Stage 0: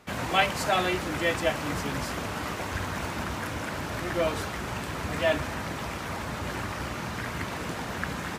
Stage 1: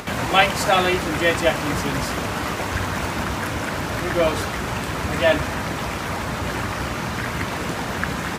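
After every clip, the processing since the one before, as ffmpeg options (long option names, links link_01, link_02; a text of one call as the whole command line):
ffmpeg -i in.wav -af "acompressor=mode=upward:threshold=-32dB:ratio=2.5,volume=7.5dB" out.wav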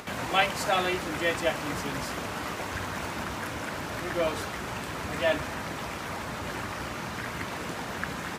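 ffmpeg -i in.wav -af "lowshelf=frequency=140:gain=-6,volume=-8dB" out.wav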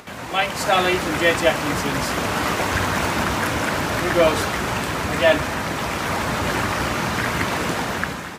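ffmpeg -i in.wav -af "dynaudnorm=framelen=210:gausssize=5:maxgain=12.5dB" out.wav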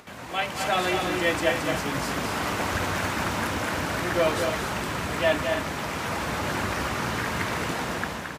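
ffmpeg -i in.wav -af "aecho=1:1:221.6|271.1:0.501|0.316,volume=-7dB" out.wav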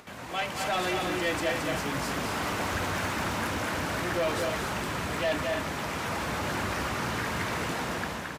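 ffmpeg -i in.wav -af "asoftclip=type=tanh:threshold=-21dB,volume=-1.5dB" out.wav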